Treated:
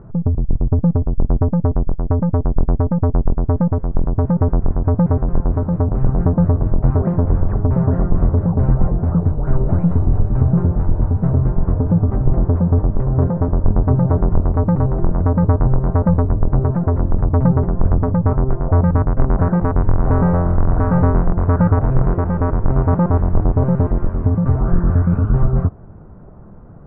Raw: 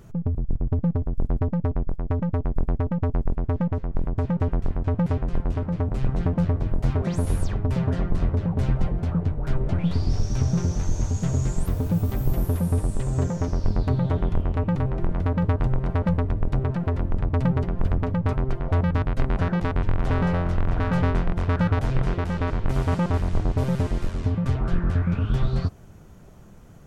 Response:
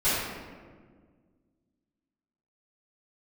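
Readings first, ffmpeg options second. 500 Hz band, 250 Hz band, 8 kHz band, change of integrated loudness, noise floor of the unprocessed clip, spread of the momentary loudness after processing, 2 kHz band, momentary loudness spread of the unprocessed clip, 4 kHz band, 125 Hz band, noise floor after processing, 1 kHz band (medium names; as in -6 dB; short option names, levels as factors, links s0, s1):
+8.0 dB, +8.0 dB, no reading, +8.0 dB, -37 dBFS, 4 LU, -0.5 dB, 4 LU, under -20 dB, +8.0 dB, -29 dBFS, +7.5 dB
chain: -af "lowpass=f=1300:w=0.5412,lowpass=f=1300:w=1.3066,volume=2.51"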